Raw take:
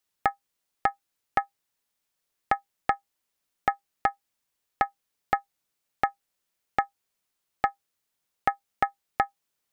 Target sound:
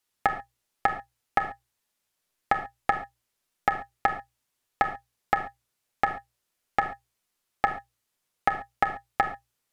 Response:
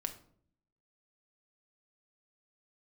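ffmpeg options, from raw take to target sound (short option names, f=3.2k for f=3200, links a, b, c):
-filter_complex "[0:a]bandreject=f=60:t=h:w=6,bandreject=f=120:t=h:w=6[a];[1:a]atrim=start_sample=2205,atrim=end_sample=3969,asetrate=26901,aresample=44100[b];[a][b]afir=irnorm=-1:irlink=0"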